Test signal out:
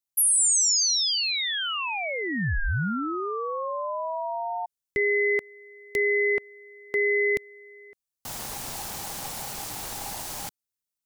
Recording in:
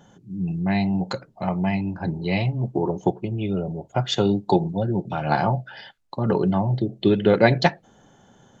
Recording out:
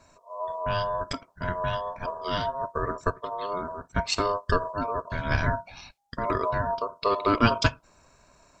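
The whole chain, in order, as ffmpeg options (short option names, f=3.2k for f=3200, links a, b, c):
-af "aeval=exprs='val(0)*sin(2*PI*810*n/s)':c=same,bass=f=250:g=8,treble=f=4k:g=10,volume=-4dB"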